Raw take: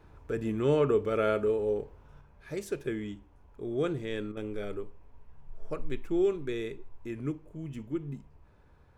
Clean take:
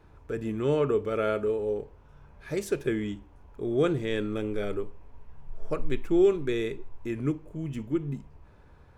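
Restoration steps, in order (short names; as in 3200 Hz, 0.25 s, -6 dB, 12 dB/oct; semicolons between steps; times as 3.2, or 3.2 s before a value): interpolate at 4.32, 46 ms; gain correction +5.5 dB, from 2.21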